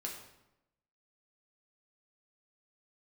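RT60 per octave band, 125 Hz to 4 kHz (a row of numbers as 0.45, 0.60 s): 1.0, 1.0, 0.90, 0.85, 0.75, 0.65 s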